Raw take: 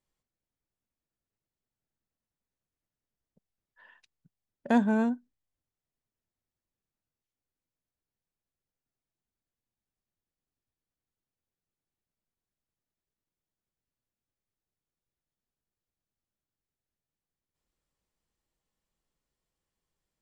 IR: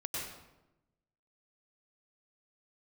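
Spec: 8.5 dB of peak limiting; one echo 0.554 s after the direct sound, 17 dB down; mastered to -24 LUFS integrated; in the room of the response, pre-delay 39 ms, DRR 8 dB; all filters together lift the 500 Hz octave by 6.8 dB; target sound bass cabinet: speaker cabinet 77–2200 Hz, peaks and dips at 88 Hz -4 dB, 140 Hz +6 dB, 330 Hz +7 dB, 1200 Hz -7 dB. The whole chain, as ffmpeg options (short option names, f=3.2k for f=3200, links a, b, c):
-filter_complex "[0:a]equalizer=f=500:t=o:g=7.5,alimiter=limit=-18.5dB:level=0:latency=1,aecho=1:1:554:0.141,asplit=2[a][b];[1:a]atrim=start_sample=2205,adelay=39[c];[b][c]afir=irnorm=-1:irlink=0,volume=-10.5dB[d];[a][d]amix=inputs=2:normalize=0,highpass=f=77:w=0.5412,highpass=f=77:w=1.3066,equalizer=f=88:t=q:w=4:g=-4,equalizer=f=140:t=q:w=4:g=6,equalizer=f=330:t=q:w=4:g=7,equalizer=f=1.2k:t=q:w=4:g=-7,lowpass=f=2.2k:w=0.5412,lowpass=f=2.2k:w=1.3066,volume=5dB"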